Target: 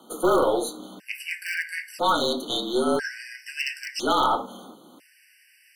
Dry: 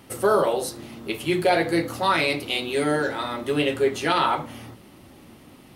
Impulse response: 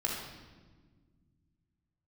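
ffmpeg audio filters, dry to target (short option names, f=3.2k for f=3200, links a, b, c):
-filter_complex "[0:a]afreqshift=-38,highpass=f=230:w=0.5412,highpass=f=230:w=1.3066,asplit=2[a][b];[b]aeval=exprs='(mod(4.22*val(0)+1,2)-1)/4.22':c=same,volume=-9dB[c];[a][c]amix=inputs=2:normalize=0,asettb=1/sr,asplit=3[d][e][f];[d]atrim=end=2.154[g];[e]atrim=start=2.15:end=4.07,asetpts=PTS-STARTPTS,afade=t=in:d=0.004:c=qsin,afade=t=out:st=1.916:d=0.004:c=qsin,equalizer=f=5.3k:t=o:w=0.32:g=14.5[h];[f]atrim=start=4.066[i];[g][h]acrossfade=d=0.004:c1=hsin:c2=qsin[j];[j][i]acrossfade=d=0.004:c1=qsin:c2=hsin,aeval=exprs='(tanh(3.98*val(0)+0.35)-tanh(0.35))/3.98':c=same,afftfilt=real='re*gt(sin(2*PI*0.5*pts/sr)*(1-2*mod(floor(b*sr/1024/1500),2)),0)':imag='im*gt(sin(2*PI*0.5*pts/sr)*(1-2*mod(floor(b*sr/1024/1500),2)),0)':win_size=1024:overlap=0.75"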